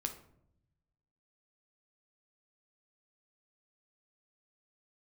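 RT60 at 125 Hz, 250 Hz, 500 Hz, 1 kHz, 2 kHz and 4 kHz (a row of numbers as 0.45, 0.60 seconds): 1.6, 1.1, 0.80, 0.60, 0.50, 0.40 seconds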